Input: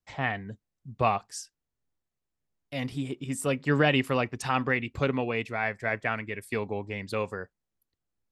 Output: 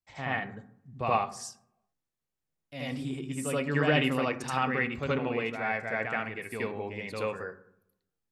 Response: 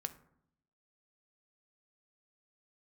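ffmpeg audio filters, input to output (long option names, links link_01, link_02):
-filter_complex "[0:a]asplit=2[link_01][link_02];[1:a]atrim=start_sample=2205,lowshelf=frequency=93:gain=-11,adelay=77[link_03];[link_02][link_03]afir=irnorm=-1:irlink=0,volume=7dB[link_04];[link_01][link_04]amix=inputs=2:normalize=0,volume=-8dB"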